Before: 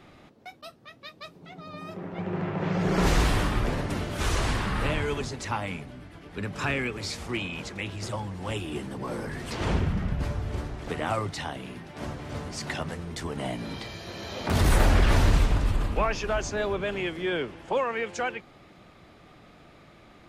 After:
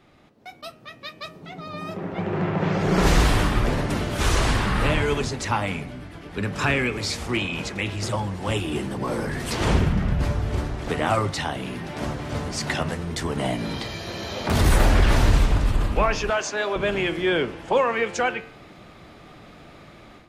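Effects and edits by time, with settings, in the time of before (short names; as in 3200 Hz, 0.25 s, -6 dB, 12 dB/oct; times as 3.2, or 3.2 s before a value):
9.4–9.89 high shelf 8200 Hz +8.5 dB
11.55–12 fast leveller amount 50%
16.3–16.76 weighting filter A
whole clip: AGC gain up to 11 dB; de-hum 89.79 Hz, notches 34; gain -4 dB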